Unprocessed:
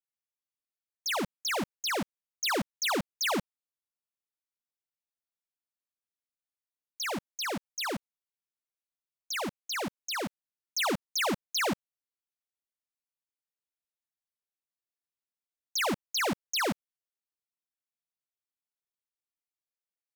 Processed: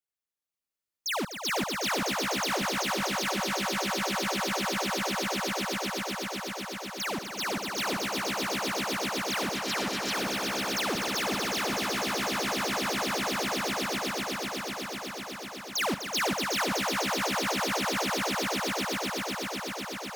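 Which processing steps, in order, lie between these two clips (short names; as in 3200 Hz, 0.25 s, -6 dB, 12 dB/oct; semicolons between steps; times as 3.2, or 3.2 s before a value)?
swelling echo 0.125 s, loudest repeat 8, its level -4 dB; limiter -21.5 dBFS, peak gain reduction 8.5 dB; 9.56–10.14 Doppler distortion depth 0.28 ms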